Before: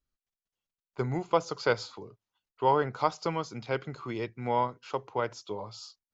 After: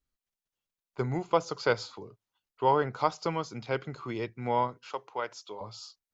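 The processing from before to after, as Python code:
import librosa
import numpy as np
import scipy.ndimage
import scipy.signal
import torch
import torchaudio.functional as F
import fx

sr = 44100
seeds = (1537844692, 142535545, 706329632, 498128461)

y = fx.highpass(x, sr, hz=750.0, slope=6, at=(4.89, 5.61))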